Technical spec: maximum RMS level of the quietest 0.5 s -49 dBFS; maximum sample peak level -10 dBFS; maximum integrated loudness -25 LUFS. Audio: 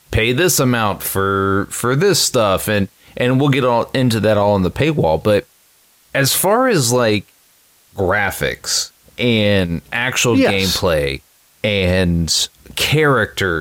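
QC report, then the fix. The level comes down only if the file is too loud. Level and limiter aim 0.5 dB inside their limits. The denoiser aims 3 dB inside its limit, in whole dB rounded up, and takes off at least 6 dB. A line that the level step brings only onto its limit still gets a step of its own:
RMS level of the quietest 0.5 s -53 dBFS: pass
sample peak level -5.5 dBFS: fail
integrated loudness -16.0 LUFS: fail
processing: trim -9.5 dB

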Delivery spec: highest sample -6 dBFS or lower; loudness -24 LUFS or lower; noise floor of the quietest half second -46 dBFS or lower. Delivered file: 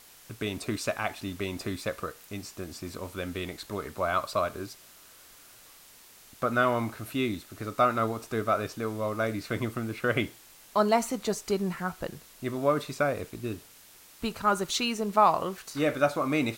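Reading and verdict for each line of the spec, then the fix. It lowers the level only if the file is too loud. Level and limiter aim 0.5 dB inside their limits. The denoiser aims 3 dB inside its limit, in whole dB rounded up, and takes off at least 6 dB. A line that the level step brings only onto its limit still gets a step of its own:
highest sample -9.5 dBFS: pass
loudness -30.0 LUFS: pass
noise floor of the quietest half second -54 dBFS: pass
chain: none needed

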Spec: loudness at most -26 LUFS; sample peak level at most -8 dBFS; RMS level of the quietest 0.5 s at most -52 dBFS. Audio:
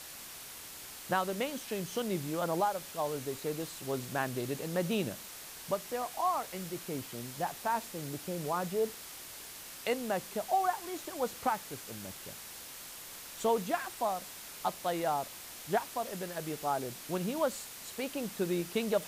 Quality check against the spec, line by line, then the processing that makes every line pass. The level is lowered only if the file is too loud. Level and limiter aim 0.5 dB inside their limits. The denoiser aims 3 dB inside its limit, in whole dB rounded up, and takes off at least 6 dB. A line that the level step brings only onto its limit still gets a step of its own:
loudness -35.5 LUFS: pass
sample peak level -18.0 dBFS: pass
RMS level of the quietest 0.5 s -47 dBFS: fail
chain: noise reduction 8 dB, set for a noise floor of -47 dBFS

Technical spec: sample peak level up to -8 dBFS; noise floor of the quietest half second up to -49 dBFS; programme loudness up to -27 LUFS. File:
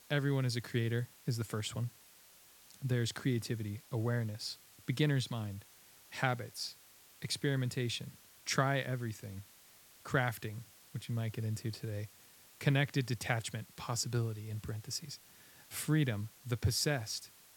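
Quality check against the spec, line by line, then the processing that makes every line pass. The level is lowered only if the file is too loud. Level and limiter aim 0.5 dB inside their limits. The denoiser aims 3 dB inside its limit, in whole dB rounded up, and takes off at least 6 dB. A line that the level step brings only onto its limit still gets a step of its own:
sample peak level -13.5 dBFS: pass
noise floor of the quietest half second -61 dBFS: pass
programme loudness -36.5 LUFS: pass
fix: none needed

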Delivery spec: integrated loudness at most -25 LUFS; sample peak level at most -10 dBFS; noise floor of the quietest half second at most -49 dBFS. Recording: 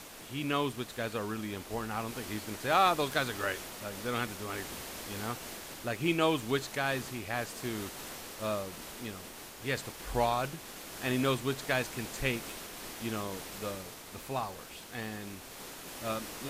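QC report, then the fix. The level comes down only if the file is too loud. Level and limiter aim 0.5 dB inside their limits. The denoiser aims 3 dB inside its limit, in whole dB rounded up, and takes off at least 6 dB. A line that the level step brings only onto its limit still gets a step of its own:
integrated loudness -34.5 LUFS: pass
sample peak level -13.0 dBFS: pass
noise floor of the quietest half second -47 dBFS: fail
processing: noise reduction 6 dB, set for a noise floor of -47 dBFS

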